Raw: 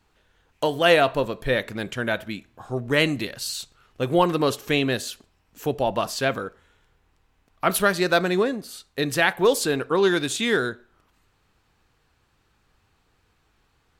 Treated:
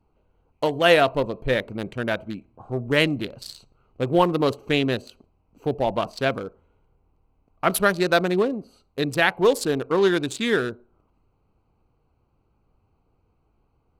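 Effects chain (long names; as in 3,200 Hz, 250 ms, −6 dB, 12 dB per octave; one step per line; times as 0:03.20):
adaptive Wiener filter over 25 samples
level +1 dB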